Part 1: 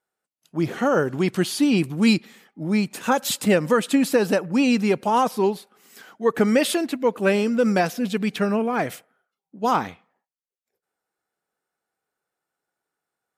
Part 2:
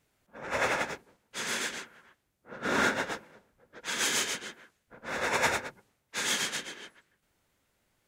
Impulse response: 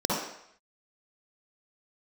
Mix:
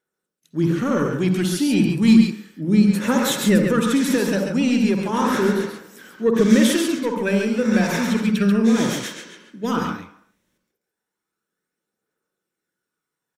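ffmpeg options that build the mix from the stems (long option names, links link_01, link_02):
-filter_complex "[0:a]asoftclip=type=tanh:threshold=-10.5dB,aphaser=in_gain=1:out_gain=1:delay=1.5:decay=0.37:speed=0.33:type=triangular,volume=-1.5dB,asplit=4[link_01][link_02][link_03][link_04];[link_02]volume=-14dB[link_05];[link_03]volume=-4dB[link_06];[1:a]adelay=2500,volume=-0.5dB,asplit=3[link_07][link_08][link_09];[link_08]volume=-11dB[link_10];[link_09]volume=-7dB[link_11];[link_04]apad=whole_len=466448[link_12];[link_07][link_12]sidechaincompress=threshold=-29dB:ratio=8:attack=16:release=236[link_13];[2:a]atrim=start_sample=2205[link_14];[link_05][link_10]amix=inputs=2:normalize=0[link_15];[link_15][link_14]afir=irnorm=-1:irlink=0[link_16];[link_06][link_11]amix=inputs=2:normalize=0,aecho=0:1:137:1[link_17];[link_01][link_13][link_16][link_17]amix=inputs=4:normalize=0,equalizer=frequency=740:width_type=o:width=0.83:gain=-11.5"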